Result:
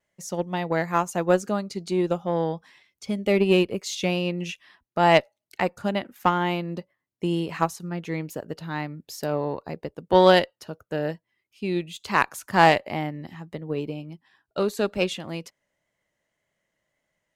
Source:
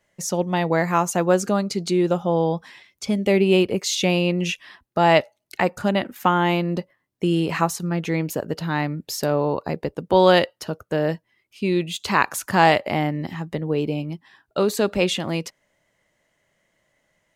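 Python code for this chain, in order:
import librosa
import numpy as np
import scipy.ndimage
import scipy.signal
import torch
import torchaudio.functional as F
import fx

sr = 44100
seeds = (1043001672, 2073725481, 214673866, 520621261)

y = fx.cheby_harmonics(x, sr, harmonics=(2, 6, 7, 8), levels_db=(-24, -30, -33, -35), full_scale_db=-2.5)
y = fx.wow_flutter(y, sr, seeds[0], rate_hz=2.1, depth_cents=27.0)
y = fx.upward_expand(y, sr, threshold_db=-28.0, expansion=1.5)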